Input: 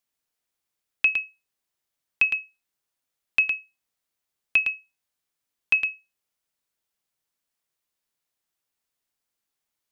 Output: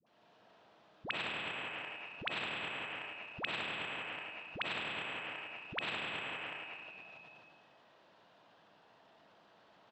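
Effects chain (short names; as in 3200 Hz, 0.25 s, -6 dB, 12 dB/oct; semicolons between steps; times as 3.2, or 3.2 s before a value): formant sharpening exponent 1.5; bell 1800 Hz -11 dB 2.3 oct; compressor, threshold -35 dBFS, peak gain reduction 10 dB; speaker cabinet 180–3000 Hz, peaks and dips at 260 Hz -5 dB, 390 Hz -4 dB, 670 Hz +5 dB, 950 Hz +5 dB, 1600 Hz +4 dB, 2200 Hz -6 dB; dispersion highs, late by 66 ms, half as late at 570 Hz; on a send: feedback echo 0.196 s, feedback 17%, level -11 dB; on the sum: digital reverb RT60 2 s, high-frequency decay 0.7×, pre-delay 20 ms, DRR -3.5 dB; transient shaper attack -3 dB, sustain +6 dB; spectral compressor 4:1; gain +8 dB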